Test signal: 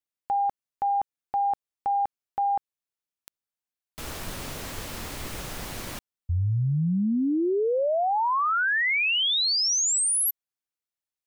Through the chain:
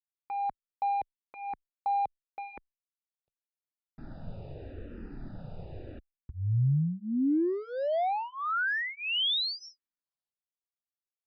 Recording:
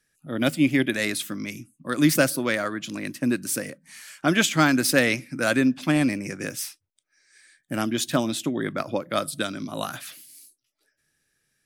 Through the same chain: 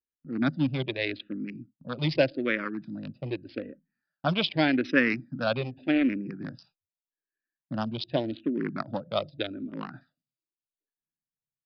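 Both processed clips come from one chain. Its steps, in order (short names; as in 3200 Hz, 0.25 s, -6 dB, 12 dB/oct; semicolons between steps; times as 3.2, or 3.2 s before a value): Wiener smoothing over 41 samples; gate with hold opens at -44 dBFS, closes at -54 dBFS, hold 21 ms, range -20 dB; downsampling 11025 Hz; endless phaser -0.84 Hz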